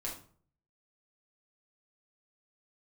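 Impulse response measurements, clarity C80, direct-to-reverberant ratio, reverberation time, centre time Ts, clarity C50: 12.0 dB, −4.0 dB, 0.50 s, 27 ms, 7.0 dB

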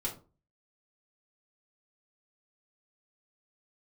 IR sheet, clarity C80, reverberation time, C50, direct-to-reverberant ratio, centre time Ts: 16.0 dB, 0.35 s, 10.5 dB, −4.5 dB, 18 ms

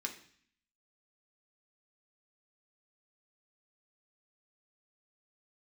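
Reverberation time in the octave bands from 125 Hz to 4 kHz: 0.75, 0.80, 0.50, 0.55, 0.70, 0.65 seconds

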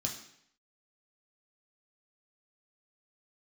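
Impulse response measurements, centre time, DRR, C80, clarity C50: 24 ms, −0.5 dB, 10.5 dB, 7.5 dB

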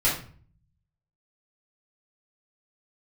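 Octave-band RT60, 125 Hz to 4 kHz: 1.1, 0.75, 0.45, 0.45, 0.40, 0.35 seconds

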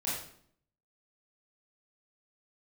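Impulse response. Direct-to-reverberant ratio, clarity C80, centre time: −8.5 dB, 5.5 dB, 55 ms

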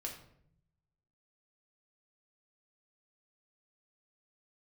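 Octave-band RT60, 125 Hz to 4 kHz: 1.4, 1.1, 0.80, 0.60, 0.55, 0.45 seconds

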